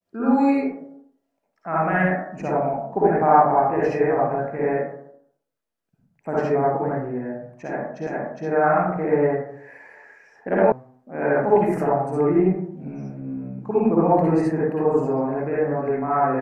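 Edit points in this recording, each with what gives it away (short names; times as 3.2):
8.07 repeat of the last 0.41 s
10.72 sound cut off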